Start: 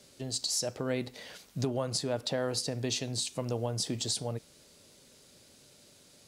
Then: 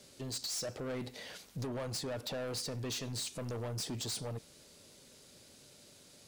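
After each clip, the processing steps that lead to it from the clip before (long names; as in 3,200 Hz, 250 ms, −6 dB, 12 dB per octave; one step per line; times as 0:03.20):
soft clipping −35 dBFS, distortion −7 dB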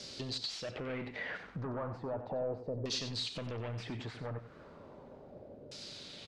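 downward compressor 5 to 1, threshold −48 dBFS, peak gain reduction 10 dB
auto-filter low-pass saw down 0.35 Hz 520–5,200 Hz
single-tap delay 93 ms −10.5 dB
level +8 dB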